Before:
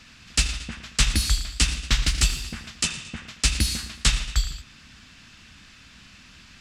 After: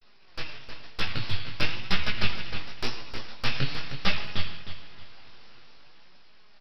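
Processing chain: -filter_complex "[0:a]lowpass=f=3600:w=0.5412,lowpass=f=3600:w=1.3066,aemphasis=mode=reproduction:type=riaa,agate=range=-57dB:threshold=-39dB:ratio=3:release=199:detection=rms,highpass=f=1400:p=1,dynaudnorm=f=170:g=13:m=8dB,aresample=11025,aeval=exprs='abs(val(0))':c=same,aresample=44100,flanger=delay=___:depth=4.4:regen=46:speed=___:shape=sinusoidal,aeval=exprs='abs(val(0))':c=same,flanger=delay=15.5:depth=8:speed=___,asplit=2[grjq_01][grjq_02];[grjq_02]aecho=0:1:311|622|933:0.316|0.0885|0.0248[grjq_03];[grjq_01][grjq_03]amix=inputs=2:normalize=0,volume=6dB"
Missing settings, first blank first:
4.7, 0.47, 1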